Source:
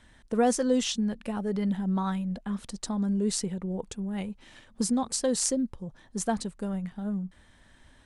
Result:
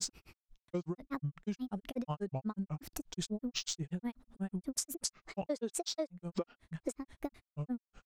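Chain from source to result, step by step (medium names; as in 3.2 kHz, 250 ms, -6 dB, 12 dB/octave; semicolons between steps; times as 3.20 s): time-frequency box 5.14–6.50 s, 250–7300 Hz +12 dB; granulator 100 ms, grains 8.2 per s, spray 769 ms, pitch spread up and down by 7 st; compression 12:1, threshold -36 dBFS, peak gain reduction 23.5 dB; trim +2.5 dB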